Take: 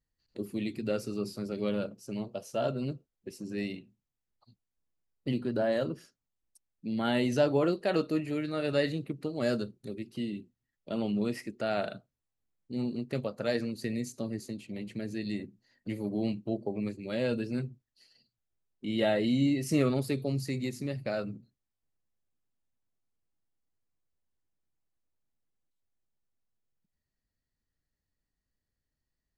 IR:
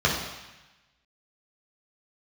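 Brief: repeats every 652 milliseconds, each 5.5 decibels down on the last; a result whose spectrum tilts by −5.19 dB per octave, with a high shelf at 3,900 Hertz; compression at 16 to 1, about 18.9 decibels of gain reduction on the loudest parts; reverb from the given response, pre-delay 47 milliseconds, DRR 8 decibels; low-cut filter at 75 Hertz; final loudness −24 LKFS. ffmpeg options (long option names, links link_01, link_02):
-filter_complex "[0:a]highpass=75,highshelf=frequency=3900:gain=8.5,acompressor=threshold=-39dB:ratio=16,aecho=1:1:652|1304|1956|2608|3260|3912|4564:0.531|0.281|0.149|0.079|0.0419|0.0222|0.0118,asplit=2[link_01][link_02];[1:a]atrim=start_sample=2205,adelay=47[link_03];[link_02][link_03]afir=irnorm=-1:irlink=0,volume=-24dB[link_04];[link_01][link_04]amix=inputs=2:normalize=0,volume=19dB"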